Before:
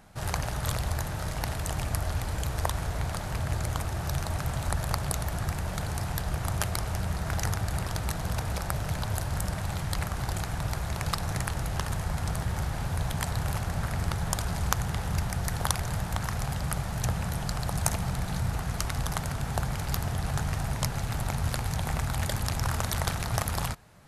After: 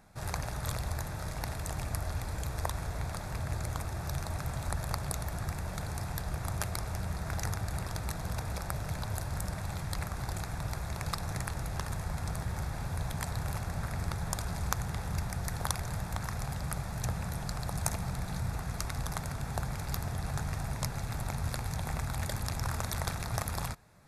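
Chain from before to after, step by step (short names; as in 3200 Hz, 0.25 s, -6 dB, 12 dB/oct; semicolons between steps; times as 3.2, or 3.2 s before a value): notch 3000 Hz, Q 5.8; gain -5 dB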